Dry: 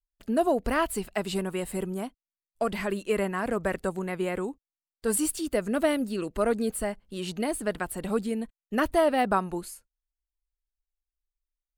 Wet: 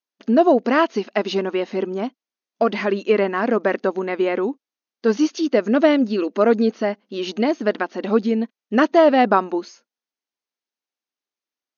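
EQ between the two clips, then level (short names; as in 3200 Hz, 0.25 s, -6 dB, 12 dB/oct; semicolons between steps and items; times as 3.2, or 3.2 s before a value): brick-wall FIR band-pass 200–6700 Hz; low shelf 430 Hz +5 dB; +7.5 dB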